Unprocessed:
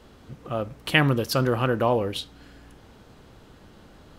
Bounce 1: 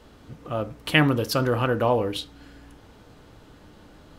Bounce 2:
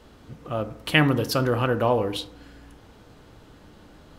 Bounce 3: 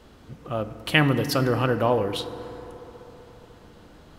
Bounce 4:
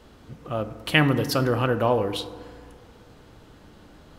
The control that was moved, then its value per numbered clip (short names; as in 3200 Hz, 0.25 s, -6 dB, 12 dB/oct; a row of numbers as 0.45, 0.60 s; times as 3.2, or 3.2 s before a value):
FDN reverb, RT60: 0.32, 0.81, 4.1, 1.9 s